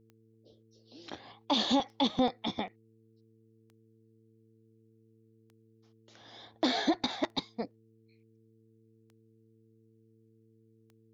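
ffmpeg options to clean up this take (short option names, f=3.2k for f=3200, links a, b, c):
-af "adeclick=t=4,bandreject=f=111.6:t=h:w=4,bandreject=f=223.2:t=h:w=4,bandreject=f=334.8:t=h:w=4,bandreject=f=446.4:t=h:w=4"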